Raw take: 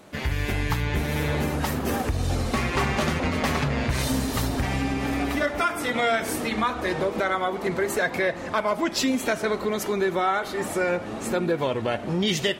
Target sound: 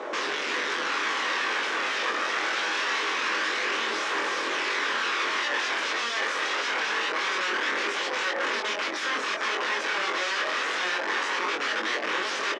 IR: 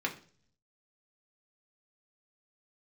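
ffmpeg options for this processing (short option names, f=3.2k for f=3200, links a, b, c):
-filter_complex "[0:a]equalizer=f=660:t=o:w=1.5:g=12.5,acontrast=40,alimiter=limit=-7dB:level=0:latency=1:release=485,acompressor=threshold=-22dB:ratio=3,aeval=exprs='(mod(14.1*val(0)+1,2)-1)/14.1':c=same,aphaser=in_gain=1:out_gain=1:delay=1.7:decay=0.27:speed=0.24:type=triangular,aeval=exprs='0.1*sin(PI/2*1.58*val(0)/0.1)':c=same,acrusher=bits=6:mix=0:aa=0.000001,highpass=f=320:w=0.5412,highpass=f=320:w=1.3066,equalizer=f=710:t=q:w=4:g=-9,equalizer=f=1.1k:t=q:w=4:g=4,equalizer=f=1.7k:t=q:w=4:g=4,equalizer=f=4.4k:t=q:w=4:g=-5,lowpass=f=5.5k:w=0.5412,lowpass=f=5.5k:w=1.3066,asplit=2[a][b];[b]adelay=22,volume=-3.5dB[c];[a][c]amix=inputs=2:normalize=0,asplit=2[d][e];[1:a]atrim=start_sample=2205[f];[e][f]afir=irnorm=-1:irlink=0,volume=-14.5dB[g];[d][g]amix=inputs=2:normalize=0,volume=-7.5dB"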